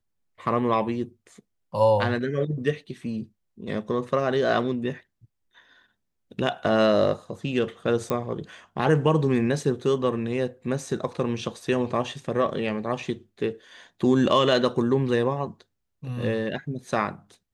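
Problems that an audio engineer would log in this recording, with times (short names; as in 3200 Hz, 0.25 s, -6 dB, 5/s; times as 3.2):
8.1 pop -14 dBFS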